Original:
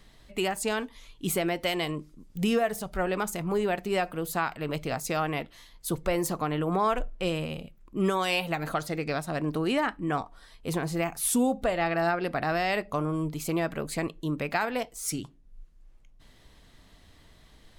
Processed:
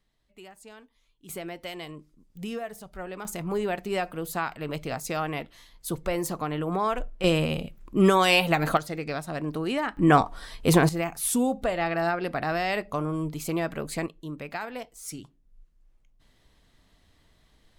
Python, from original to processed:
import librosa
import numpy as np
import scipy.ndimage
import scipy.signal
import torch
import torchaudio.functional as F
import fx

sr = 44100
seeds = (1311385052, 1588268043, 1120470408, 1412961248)

y = fx.gain(x, sr, db=fx.steps((0.0, -19.0), (1.29, -9.0), (3.25, -1.0), (7.24, 7.0), (8.77, -1.5), (9.97, 11.0), (10.89, 0.0), (14.06, -6.5)))